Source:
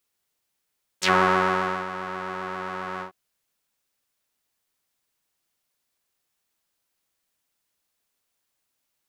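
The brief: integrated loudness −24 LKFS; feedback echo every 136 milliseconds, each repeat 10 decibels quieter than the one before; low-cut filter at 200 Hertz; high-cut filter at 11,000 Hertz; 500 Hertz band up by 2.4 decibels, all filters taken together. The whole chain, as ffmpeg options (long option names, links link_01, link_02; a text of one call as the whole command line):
ffmpeg -i in.wav -af "highpass=200,lowpass=11000,equalizer=frequency=500:width_type=o:gain=3.5,aecho=1:1:136|272|408|544:0.316|0.101|0.0324|0.0104" out.wav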